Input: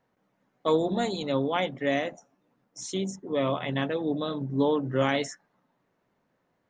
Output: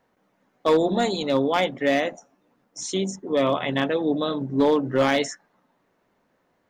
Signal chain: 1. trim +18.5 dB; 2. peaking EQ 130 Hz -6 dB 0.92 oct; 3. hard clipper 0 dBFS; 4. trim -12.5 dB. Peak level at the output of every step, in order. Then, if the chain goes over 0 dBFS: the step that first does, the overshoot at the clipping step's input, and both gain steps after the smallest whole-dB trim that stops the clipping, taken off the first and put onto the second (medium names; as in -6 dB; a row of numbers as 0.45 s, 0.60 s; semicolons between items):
+6.5 dBFS, +5.5 dBFS, 0.0 dBFS, -12.5 dBFS; step 1, 5.5 dB; step 1 +12.5 dB, step 4 -6.5 dB